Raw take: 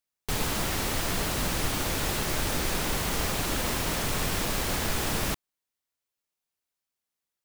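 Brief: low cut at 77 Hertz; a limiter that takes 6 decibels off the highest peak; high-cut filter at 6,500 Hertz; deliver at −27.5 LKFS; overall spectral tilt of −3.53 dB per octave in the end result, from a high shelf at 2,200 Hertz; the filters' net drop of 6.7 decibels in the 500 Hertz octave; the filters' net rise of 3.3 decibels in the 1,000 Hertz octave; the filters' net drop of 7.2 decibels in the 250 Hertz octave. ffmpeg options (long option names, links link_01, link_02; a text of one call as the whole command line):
ffmpeg -i in.wav -af "highpass=77,lowpass=6500,equalizer=frequency=250:width_type=o:gain=-8,equalizer=frequency=500:width_type=o:gain=-9,equalizer=frequency=1000:width_type=o:gain=8.5,highshelf=frequency=2200:gain=-7,volume=6.5dB,alimiter=limit=-18.5dB:level=0:latency=1" out.wav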